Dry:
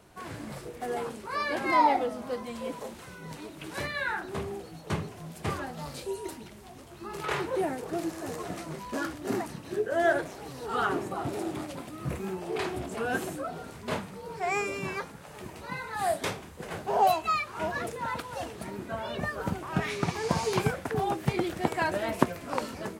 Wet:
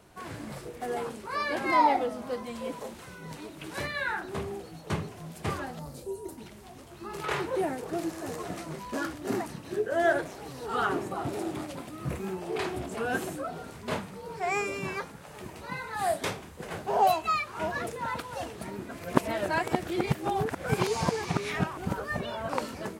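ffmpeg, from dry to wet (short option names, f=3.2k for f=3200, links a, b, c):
-filter_complex "[0:a]asettb=1/sr,asplit=3[a][b][c];[a]atrim=end=5.794[d];[b]atrim=start=5.79:end=6.38,asetpts=PTS-STARTPTS,afade=t=in:d=0.004:c=qsin,afade=t=out:st=0.586:d=0.004:c=qsin,equalizer=f=2.6k:t=o:w=2.6:g=-14[e];[c]atrim=start=6.376[f];[d][e]acrossfade=d=0.004:c1=hsin:c2=qsin[g];[g][f]acrossfade=d=0.004:c1=qsin:c2=hsin,asplit=3[h][i][j];[h]atrim=end=18.912[k];[i]atrim=start=18.908:end=22.492,asetpts=PTS-STARTPTS,areverse[l];[j]atrim=start=22.488[m];[k][l]acrossfade=d=0.004:c1=hsin:c2=hsin[n];[n][m]acrossfade=d=0.004:c1=hsin:c2=hsin"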